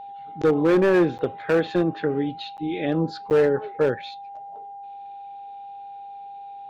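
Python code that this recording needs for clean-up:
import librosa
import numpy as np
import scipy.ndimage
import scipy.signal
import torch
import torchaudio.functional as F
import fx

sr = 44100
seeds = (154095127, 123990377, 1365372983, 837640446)

y = fx.fix_declip(x, sr, threshold_db=-13.5)
y = fx.notch(y, sr, hz=800.0, q=30.0)
y = fx.fix_interpolate(y, sr, at_s=(1.18, 2.57, 3.3), length_ms=9.1)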